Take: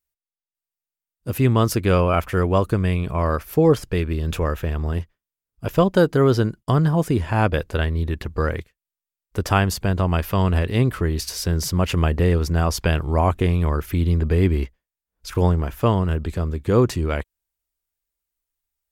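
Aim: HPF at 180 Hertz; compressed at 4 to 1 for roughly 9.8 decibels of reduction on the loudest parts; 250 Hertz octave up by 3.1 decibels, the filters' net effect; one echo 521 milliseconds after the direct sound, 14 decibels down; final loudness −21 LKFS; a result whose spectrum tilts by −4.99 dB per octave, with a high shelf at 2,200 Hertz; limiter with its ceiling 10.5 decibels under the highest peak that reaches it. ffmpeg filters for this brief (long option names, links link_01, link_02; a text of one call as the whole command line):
ffmpeg -i in.wav -af "highpass=180,equalizer=frequency=250:width_type=o:gain=6.5,highshelf=frequency=2200:gain=4.5,acompressor=threshold=-21dB:ratio=4,alimiter=limit=-16.5dB:level=0:latency=1,aecho=1:1:521:0.2,volume=8dB" out.wav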